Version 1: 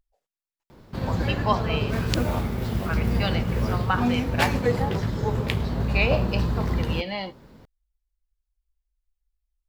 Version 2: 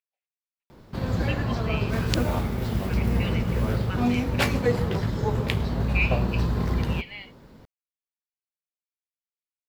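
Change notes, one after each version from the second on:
speech: add band-pass filter 2.4 kHz, Q 3.8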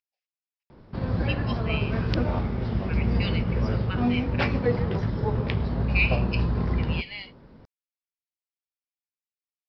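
background: add distance through air 470 m; master: add resonant low-pass 5.2 kHz, resonance Q 6.8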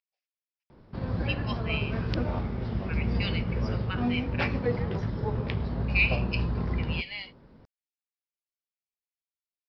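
background -4.0 dB

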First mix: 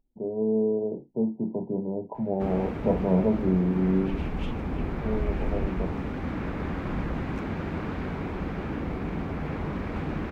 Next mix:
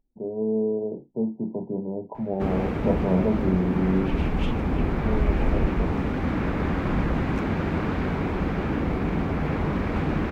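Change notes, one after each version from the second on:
background +6.0 dB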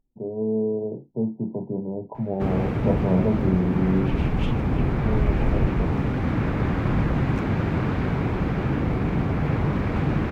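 master: add peaking EQ 120 Hz +13.5 dB 0.37 oct

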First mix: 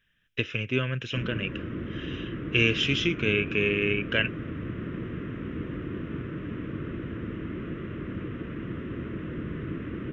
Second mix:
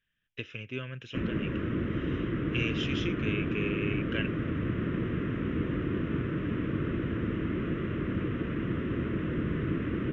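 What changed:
speech -10.0 dB; background +3.5 dB

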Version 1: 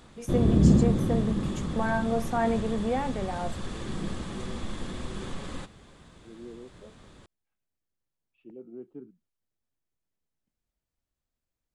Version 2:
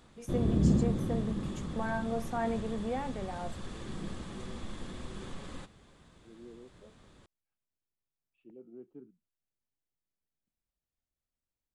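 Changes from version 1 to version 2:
first voice -6.5 dB; second voice -6.5 dB; background -6.5 dB

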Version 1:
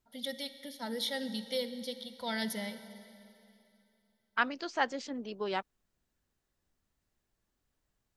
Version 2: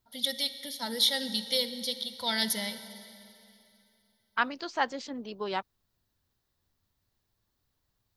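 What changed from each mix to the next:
first voice: add treble shelf 2.7 kHz +11.5 dB; master: add fifteen-band graphic EQ 100 Hz +10 dB, 1 kHz +4 dB, 4 kHz +4 dB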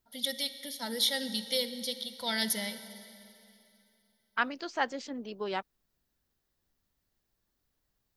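master: add fifteen-band graphic EQ 100 Hz -10 dB, 1 kHz -4 dB, 4 kHz -4 dB

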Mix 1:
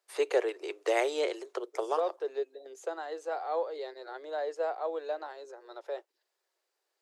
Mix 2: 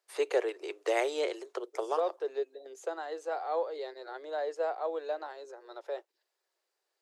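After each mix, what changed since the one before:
reverb: off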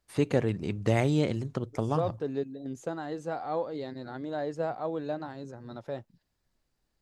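master: remove steep high-pass 360 Hz 72 dB/octave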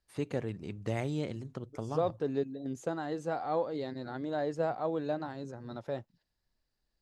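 first voice -8.5 dB

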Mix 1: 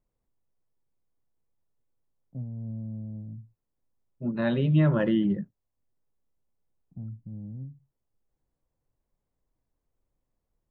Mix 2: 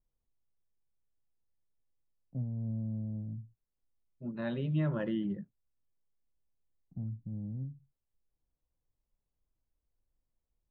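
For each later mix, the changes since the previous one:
second voice -9.5 dB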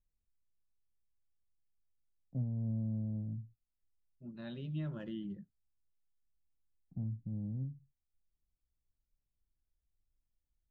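second voice: add graphic EQ 125/250/500/1000/2000 Hz -7/-5/-10/-10/-9 dB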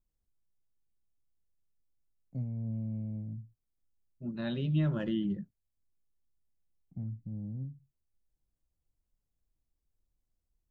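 first voice: remove low-pass 1.4 kHz 24 dB/octave; second voice +10.0 dB

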